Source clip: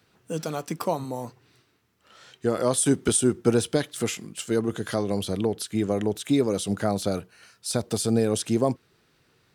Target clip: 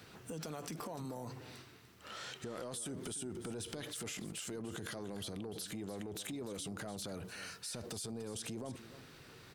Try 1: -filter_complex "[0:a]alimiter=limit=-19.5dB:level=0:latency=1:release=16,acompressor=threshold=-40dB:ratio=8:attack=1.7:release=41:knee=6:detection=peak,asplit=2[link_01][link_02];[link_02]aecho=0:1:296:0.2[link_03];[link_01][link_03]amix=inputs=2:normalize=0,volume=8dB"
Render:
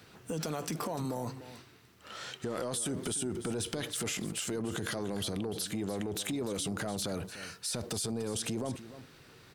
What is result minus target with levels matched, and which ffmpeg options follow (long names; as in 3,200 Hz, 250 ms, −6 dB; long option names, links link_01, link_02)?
downward compressor: peak gain reduction −8.5 dB
-filter_complex "[0:a]alimiter=limit=-19.5dB:level=0:latency=1:release=16,acompressor=threshold=-49.5dB:ratio=8:attack=1.7:release=41:knee=6:detection=peak,asplit=2[link_01][link_02];[link_02]aecho=0:1:296:0.2[link_03];[link_01][link_03]amix=inputs=2:normalize=0,volume=8dB"